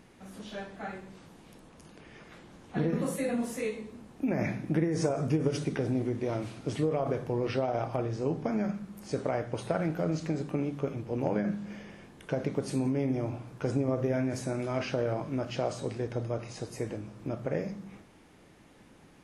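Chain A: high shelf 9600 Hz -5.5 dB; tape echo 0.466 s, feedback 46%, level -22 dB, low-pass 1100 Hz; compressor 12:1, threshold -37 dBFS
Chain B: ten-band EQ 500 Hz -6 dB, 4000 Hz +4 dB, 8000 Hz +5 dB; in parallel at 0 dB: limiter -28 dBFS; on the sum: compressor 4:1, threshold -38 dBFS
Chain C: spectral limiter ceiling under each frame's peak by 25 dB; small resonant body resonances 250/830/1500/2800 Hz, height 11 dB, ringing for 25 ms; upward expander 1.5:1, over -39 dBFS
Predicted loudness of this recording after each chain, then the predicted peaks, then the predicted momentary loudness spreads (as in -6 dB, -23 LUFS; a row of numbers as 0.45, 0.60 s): -43.0, -40.5, -29.5 LUFS; -25.5, -22.5, -9.0 dBFS; 10, 7, 12 LU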